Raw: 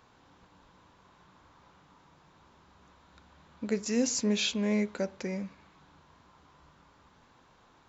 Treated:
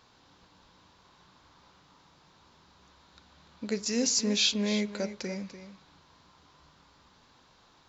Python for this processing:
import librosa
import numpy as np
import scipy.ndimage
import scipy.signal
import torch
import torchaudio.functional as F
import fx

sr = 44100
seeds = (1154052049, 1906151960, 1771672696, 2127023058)

y = fx.peak_eq(x, sr, hz=4600.0, db=10.0, octaves=1.1)
y = y + 10.0 ** (-12.0 / 20.0) * np.pad(y, (int(293 * sr / 1000.0), 0))[:len(y)]
y = F.gain(torch.from_numpy(y), -1.5).numpy()